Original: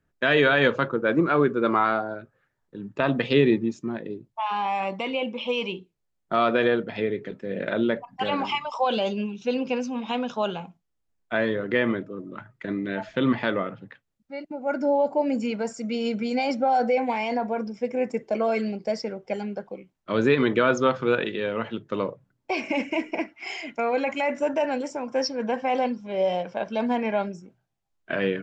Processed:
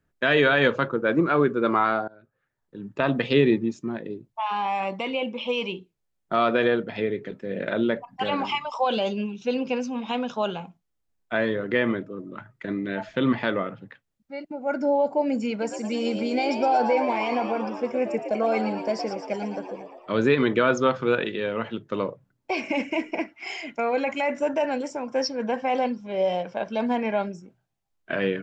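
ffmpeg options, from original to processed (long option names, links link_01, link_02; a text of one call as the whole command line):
ffmpeg -i in.wav -filter_complex "[0:a]asettb=1/sr,asplit=3[link_01][link_02][link_03];[link_01]atrim=end=15.504[link_04];[link_02]atrim=start=15.5:end=20.12,asetpts=PTS-STARTPTS,afade=type=in:duration=0.004:curve=qsin,afade=type=out:start_time=4.616:duration=0.004:curve=qsin,asplit=8[link_05][link_06][link_07][link_08][link_09][link_10][link_11][link_12];[link_06]adelay=115,afreqshift=82,volume=-8dB[link_13];[link_07]adelay=230,afreqshift=164,volume=-12.7dB[link_14];[link_08]adelay=345,afreqshift=246,volume=-17.5dB[link_15];[link_09]adelay=460,afreqshift=328,volume=-22.2dB[link_16];[link_10]adelay=575,afreqshift=410,volume=-26.9dB[link_17];[link_11]adelay=690,afreqshift=492,volume=-31.7dB[link_18];[link_12]adelay=805,afreqshift=574,volume=-36.4dB[link_19];[link_05][link_13][link_14][link_15][link_16][link_17][link_18][link_19]amix=inputs=8:normalize=0,atrim=end_sample=203742[link_20];[link_03]atrim=start=20.116[link_21];[link_04][link_20]acrossfade=duration=0.004:curve1=hsin:curve2=qsin[link_22];[link_22][link_21]acrossfade=duration=0.004:curve1=qsin:curve2=hsin,asplit=2[link_23][link_24];[link_23]atrim=end=2.08,asetpts=PTS-STARTPTS,afade=type=out:start_time=2.076:duration=0.004:curve=hsin:silence=0.0707946[link_25];[link_24]atrim=start=2.08,asetpts=PTS-STARTPTS,afade=type=in:duration=0.81:silence=0.0707946[link_26];[link_25][link_26]concat=n=2:v=0:a=1" out.wav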